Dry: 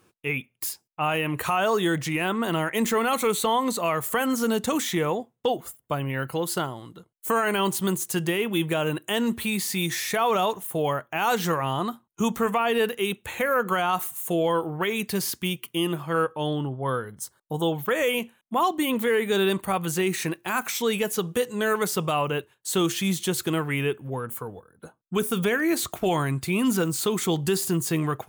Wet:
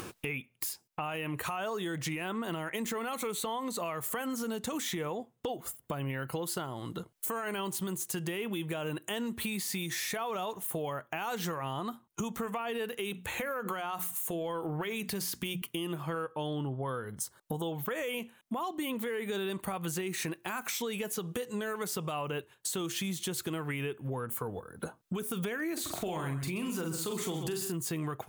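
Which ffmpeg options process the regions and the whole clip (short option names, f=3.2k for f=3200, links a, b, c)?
-filter_complex "[0:a]asettb=1/sr,asplit=3[a][b][c];[a]atrim=end=12.954[d];[b]atrim=start=12.95:end=15.62,asetpts=PTS-STARTPTS,afade=t=in:d=0.004:c=qsin,afade=t=out:st=2.666:d=0.004:c=qsin,bandreject=f=60:t=h:w=6,bandreject=f=120:t=h:w=6,bandreject=f=180:t=h:w=6,bandreject=f=240:t=h:w=6,acompressor=threshold=-28dB:ratio=4:attack=3.2:release=140:knee=1:detection=peak[e];[c]atrim=start=15.616[f];[d][e]acrossfade=d=0.004:c1=hsin:c2=qsin[g];[g][f]acrossfade=d=0.004:c1=qsin:c2=hsin,asettb=1/sr,asplit=3[h][i][j];[h]atrim=end=25.734[k];[i]atrim=start=25.73:end=27.72,asetpts=PTS-STARTPTS,afade=t=in:d=0.004:c=qsin,afade=t=out:st=1.986:d=0.004:c=qsin,asplit=2[l][m];[m]adelay=44,volume=-5.5dB[n];[l][n]amix=inputs=2:normalize=0,atrim=end_sample=87759,aecho=1:1:131:0.266,atrim=end_sample=87759[o];[j]atrim=start=27.716[p];[k][o]acrossfade=d=0.004:c1=hsin:c2=qsin[q];[q][p]acrossfade=d=0.004:c1=qsin:c2=hsin,acompressor=mode=upward:threshold=-31dB:ratio=2.5,alimiter=limit=-22dB:level=0:latency=1:release=256,acompressor=threshold=-34dB:ratio=6,volume=2dB"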